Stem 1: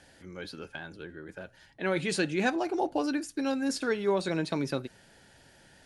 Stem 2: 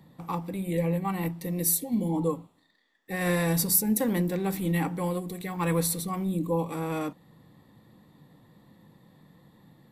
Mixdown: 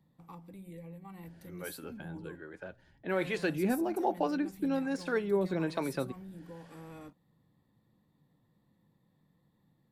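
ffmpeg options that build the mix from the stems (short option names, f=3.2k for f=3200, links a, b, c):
-filter_complex "[0:a]deesser=0.85,highshelf=f=3.1k:g=-11.5,acrossover=split=410[a][b];[a]aeval=exprs='val(0)*(1-0.7/2+0.7/2*cos(2*PI*1.2*n/s))':c=same[c];[b]aeval=exprs='val(0)*(1-0.7/2-0.7/2*cos(2*PI*1.2*n/s))':c=same[d];[c][d]amix=inputs=2:normalize=0,adelay=1250,volume=2dB[e];[1:a]lowshelf=f=160:g=6,acompressor=threshold=-27dB:ratio=6,volume=-17dB[f];[e][f]amix=inputs=2:normalize=0"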